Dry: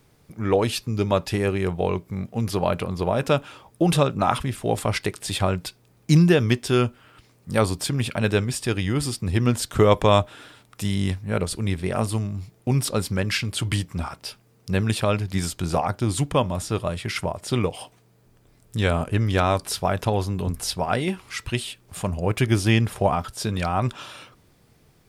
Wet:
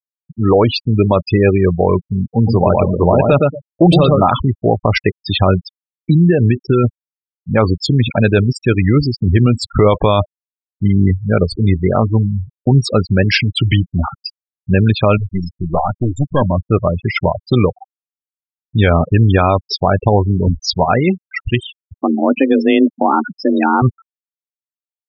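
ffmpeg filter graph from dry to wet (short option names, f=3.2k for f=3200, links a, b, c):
-filter_complex "[0:a]asettb=1/sr,asplit=3[a][b][c];[a]atrim=end=2.294[d];[b]atrim=start=2.29:end=4.24,asetpts=PTS-STARTPTS,afade=t=in:d=0.004:c=qsin,afade=t=out:st=1.946:d=0.004:c=qsin,asoftclip=type=hard:threshold=-13.5dB,equalizer=f=1.8k:t=o:w=0.59:g=-4,aecho=1:1:115|230|345:0.631|0.126|0.0252,atrim=end_sample=85995[e];[c]atrim=start=4.236[f];[d][e]acrossfade=d=0.004:c1=hsin:c2=qsin[g];[g][f]acrossfade=d=0.004:c1=qsin:c2=hsin,asettb=1/sr,asplit=3[h][i][j];[h]atrim=end=5.584[k];[i]atrim=start=5.58:end=6.84,asetpts=PTS-STARTPTS,afade=t=in:d=0.004:c=qsin,afade=t=out:st=1.256:d=0.004:c=qsin,acompressor=threshold=-18dB:ratio=12:attack=3.2:release=140:knee=1:detection=peak,highshelf=f=6.7k:g=-8[l];[j]atrim=start=6.836[m];[k][l]acrossfade=d=0.004:c1=hsin:c2=qsin[n];[n][m]acrossfade=d=0.004:c1=qsin:c2=hsin,asettb=1/sr,asplit=3[o][p][q];[o]atrim=end=15.184[r];[p]atrim=start=15.18:end=16.42,asetpts=PTS-STARTPTS,afade=t=in:d=0.004:c=qsin,afade=t=out:st=1.236:d=0.004:c=qsin,highpass=f=86:p=1,aeval=exprs='val(0)*gte(abs(val(0)),0.00891)':c=same,aeval=exprs='(tanh(10*val(0)+0.55)-tanh(0.55))/10':c=same[s];[q]atrim=start=16.416[t];[r][s]acrossfade=d=0.004:c1=hsin:c2=qsin[u];[u][t]acrossfade=d=0.004:c1=qsin:c2=hsin,asettb=1/sr,asplit=3[v][w][x];[v]atrim=end=21.974[y];[w]atrim=start=21.97:end=23.82,asetpts=PTS-STARTPTS,afade=t=in:d=0.004:c=qsin,afade=t=out:st=1.846:d=0.004:c=qsin,highshelf=f=2.7k:g=-3.5,bandreject=f=2.1k:w=24,afreqshift=140[z];[x]atrim=start=23.816[aa];[y][z]acrossfade=d=0.004:c1=hsin:c2=qsin[ab];[ab][aa]acrossfade=d=0.004:c1=qsin:c2=hsin,lowpass=f=7.8k:w=0.5412,lowpass=f=7.8k:w=1.3066,afftfilt=real='re*gte(hypot(re,im),0.0794)':imag='im*gte(hypot(re,im),0.0794)':win_size=1024:overlap=0.75,alimiter=level_in=13dB:limit=-1dB:release=50:level=0:latency=1,volume=-1dB"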